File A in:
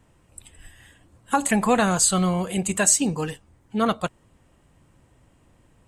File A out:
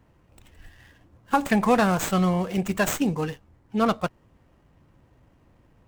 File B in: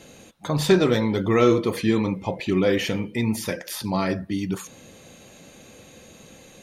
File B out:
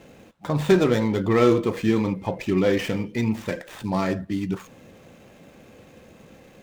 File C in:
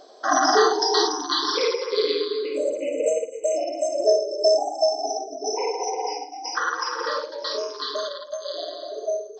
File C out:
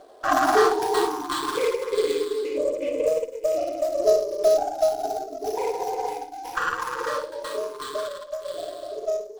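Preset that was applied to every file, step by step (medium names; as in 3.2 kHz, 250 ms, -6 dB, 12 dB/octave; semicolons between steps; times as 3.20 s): median filter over 9 samples; sliding maximum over 3 samples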